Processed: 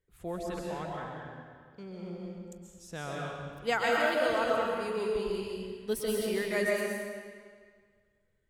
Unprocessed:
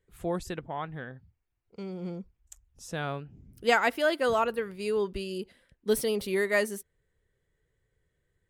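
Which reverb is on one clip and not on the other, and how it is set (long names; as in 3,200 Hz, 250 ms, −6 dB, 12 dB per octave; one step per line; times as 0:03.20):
comb and all-pass reverb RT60 1.8 s, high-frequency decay 0.9×, pre-delay 95 ms, DRR −3 dB
level −6.5 dB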